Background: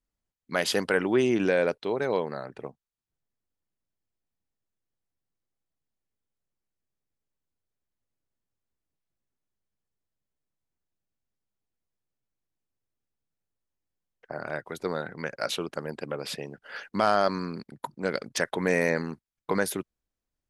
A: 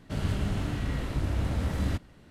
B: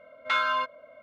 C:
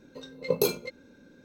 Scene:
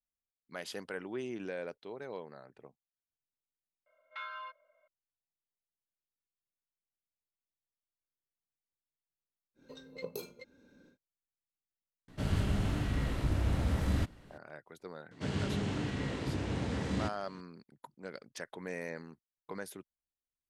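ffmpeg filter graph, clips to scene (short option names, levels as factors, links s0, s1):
-filter_complex "[1:a]asplit=2[s0][s1];[0:a]volume=0.158[s2];[2:a]acrossover=split=530 4500:gain=0.0631 1 0.141[s3][s4][s5];[s3][s4][s5]amix=inputs=3:normalize=0[s6];[3:a]acompressor=threshold=0.0316:ratio=4:attack=7.9:release=904:knee=6:detection=peak[s7];[s1]highpass=130,equalizer=f=440:t=q:w=4:g=4,equalizer=f=630:t=q:w=4:g=-4,equalizer=f=1300:t=q:w=4:g=-4,lowpass=f=8200:w=0.5412,lowpass=f=8200:w=1.3066[s8];[s6]atrim=end=1.02,asetpts=PTS-STARTPTS,volume=0.141,afade=t=in:d=0.004:c=hsin,afade=t=out:st=1.016:d=0.004:c=hsin,adelay=3860[s9];[s7]atrim=end=1.44,asetpts=PTS-STARTPTS,volume=0.447,afade=t=in:d=0.1,afade=t=out:st=1.34:d=0.1,adelay=420714S[s10];[s0]atrim=end=2.3,asetpts=PTS-STARTPTS,volume=0.794,afade=t=in:d=0.004:c=hsin,afade=t=out:st=2.296:d=0.004:c=hsin,adelay=12080[s11];[s8]atrim=end=2.3,asetpts=PTS-STARTPTS,volume=0.891,afade=t=in:d=0.004:c=hsin,afade=t=out:st=2.296:d=0.004:c=hsin,adelay=15110[s12];[s2][s9][s10][s11][s12]amix=inputs=5:normalize=0"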